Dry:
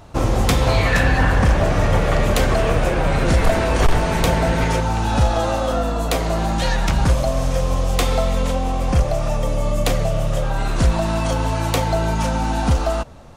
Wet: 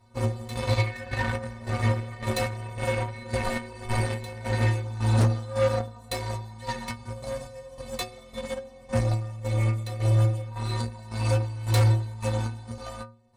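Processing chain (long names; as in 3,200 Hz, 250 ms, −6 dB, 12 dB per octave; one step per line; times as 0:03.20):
EQ curve with evenly spaced ripples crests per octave 0.96, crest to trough 7 dB
square-wave tremolo 1.8 Hz, depth 65%, duty 45%
stiff-string resonator 110 Hz, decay 0.62 s, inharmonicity 0.03
harmonic generator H 5 −10 dB, 7 −11 dB, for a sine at −15.5 dBFS
level +2.5 dB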